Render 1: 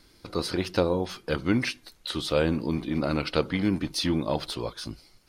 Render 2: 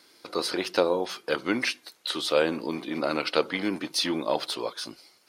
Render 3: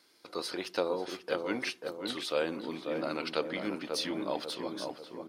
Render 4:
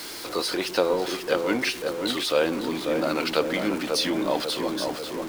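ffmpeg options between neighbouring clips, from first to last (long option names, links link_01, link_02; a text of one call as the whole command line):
ffmpeg -i in.wav -af "highpass=380,volume=3dB" out.wav
ffmpeg -i in.wav -filter_complex "[0:a]asplit=2[link_01][link_02];[link_02]adelay=541,lowpass=frequency=1100:poles=1,volume=-4dB,asplit=2[link_03][link_04];[link_04]adelay=541,lowpass=frequency=1100:poles=1,volume=0.53,asplit=2[link_05][link_06];[link_06]adelay=541,lowpass=frequency=1100:poles=1,volume=0.53,asplit=2[link_07][link_08];[link_08]adelay=541,lowpass=frequency=1100:poles=1,volume=0.53,asplit=2[link_09][link_10];[link_10]adelay=541,lowpass=frequency=1100:poles=1,volume=0.53,asplit=2[link_11][link_12];[link_12]adelay=541,lowpass=frequency=1100:poles=1,volume=0.53,asplit=2[link_13][link_14];[link_14]adelay=541,lowpass=frequency=1100:poles=1,volume=0.53[link_15];[link_01][link_03][link_05][link_07][link_09][link_11][link_13][link_15]amix=inputs=8:normalize=0,volume=-8dB" out.wav
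ffmpeg -i in.wav -af "aeval=exprs='val(0)+0.5*0.0112*sgn(val(0))':channel_layout=same,volume=7.5dB" out.wav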